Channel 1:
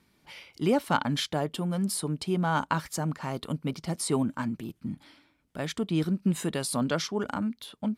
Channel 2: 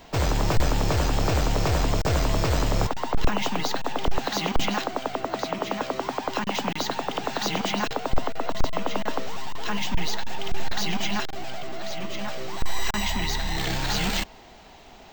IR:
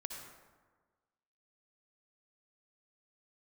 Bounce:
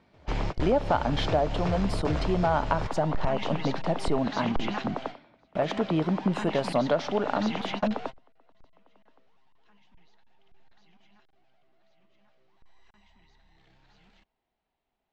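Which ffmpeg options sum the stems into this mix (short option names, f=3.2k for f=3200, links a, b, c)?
-filter_complex "[0:a]equalizer=f=650:w=1.9:g=13.5,volume=1dB,asplit=3[a][b][c];[b]volume=-16.5dB[d];[1:a]volume=-5dB[e];[c]apad=whole_len=666830[f];[e][f]sidechaingate=range=-30dB:threshold=-49dB:ratio=16:detection=peak[g];[2:a]atrim=start_sample=2205[h];[d][h]afir=irnorm=-1:irlink=0[i];[a][g][i]amix=inputs=3:normalize=0,lowpass=3.6k,acompressor=threshold=-22dB:ratio=3"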